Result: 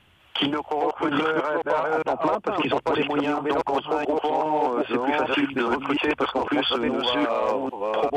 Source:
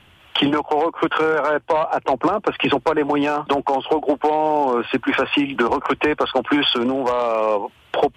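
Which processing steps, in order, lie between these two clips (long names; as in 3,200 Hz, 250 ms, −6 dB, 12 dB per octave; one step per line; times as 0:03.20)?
delay that plays each chunk backwards 405 ms, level −0.5 dB
level −7 dB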